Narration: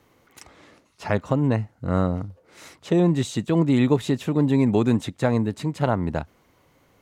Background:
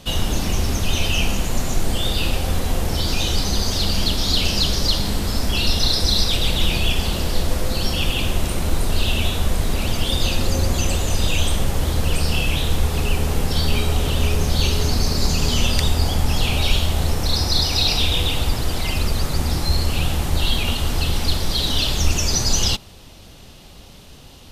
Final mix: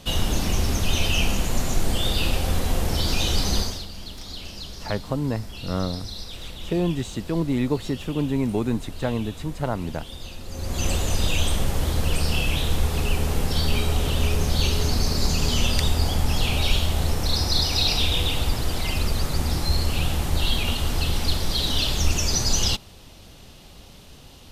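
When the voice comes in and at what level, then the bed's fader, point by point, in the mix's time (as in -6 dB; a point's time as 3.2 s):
3.80 s, -4.5 dB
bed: 3.59 s -2 dB
3.88 s -17.5 dB
10.45 s -17.5 dB
10.86 s -3 dB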